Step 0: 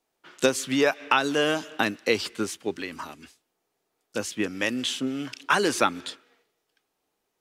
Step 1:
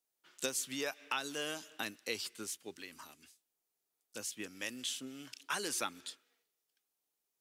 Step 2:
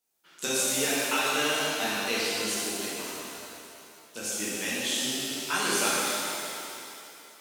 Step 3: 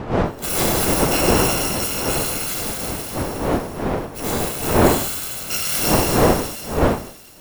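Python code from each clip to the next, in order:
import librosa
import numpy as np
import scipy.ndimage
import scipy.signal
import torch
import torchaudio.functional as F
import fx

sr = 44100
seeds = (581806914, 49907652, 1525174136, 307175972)

y1 = F.preemphasis(torch.from_numpy(x), 0.8).numpy()
y1 = y1 * librosa.db_to_amplitude(-4.5)
y2 = fx.rev_shimmer(y1, sr, seeds[0], rt60_s=2.8, semitones=7, shimmer_db=-8, drr_db=-8.5)
y2 = y2 * librosa.db_to_amplitude(3.0)
y3 = fx.bit_reversed(y2, sr, seeds[1], block=128)
y3 = fx.dmg_wind(y3, sr, seeds[2], corner_hz=610.0, level_db=-26.0)
y3 = y3 * librosa.db_to_amplitude(4.5)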